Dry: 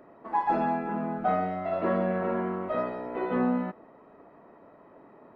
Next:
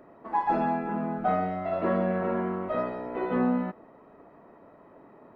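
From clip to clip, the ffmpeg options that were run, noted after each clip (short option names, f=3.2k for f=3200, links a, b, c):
-af "lowshelf=f=140:g=4"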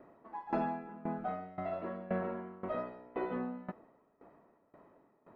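-af "aeval=exprs='val(0)*pow(10,-19*if(lt(mod(1.9*n/s,1),2*abs(1.9)/1000),1-mod(1.9*n/s,1)/(2*abs(1.9)/1000),(mod(1.9*n/s,1)-2*abs(1.9)/1000)/(1-2*abs(1.9)/1000))/20)':c=same,volume=-3.5dB"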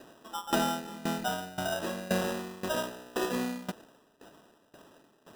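-af "acrusher=samples=20:mix=1:aa=0.000001,volume=5.5dB"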